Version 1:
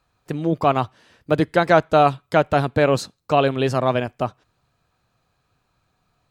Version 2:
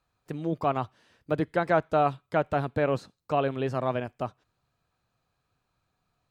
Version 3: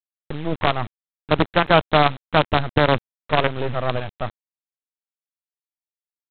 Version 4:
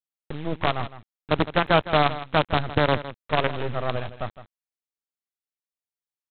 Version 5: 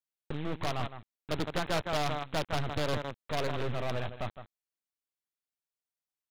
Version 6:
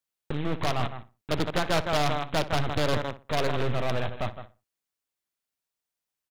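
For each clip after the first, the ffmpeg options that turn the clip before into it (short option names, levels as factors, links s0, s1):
-filter_complex "[0:a]acrossover=split=2700[s0][s1];[s1]acompressor=threshold=0.00794:ratio=4:attack=1:release=60[s2];[s0][s2]amix=inputs=2:normalize=0,volume=0.376"
-af "equalizer=f=83:w=1.5:g=13,aresample=8000,acrusher=bits=4:dc=4:mix=0:aa=0.000001,aresample=44100,volume=2.24"
-af "aecho=1:1:160:0.2,volume=0.631"
-af "asoftclip=type=hard:threshold=0.0708,volume=0.75"
-filter_complex "[0:a]asplit=2[s0][s1];[s1]adelay=61,lowpass=f=2300:p=1,volume=0.2,asplit=2[s2][s3];[s3]adelay=61,lowpass=f=2300:p=1,volume=0.27,asplit=2[s4][s5];[s5]adelay=61,lowpass=f=2300:p=1,volume=0.27[s6];[s0][s2][s4][s6]amix=inputs=4:normalize=0,volume=1.88"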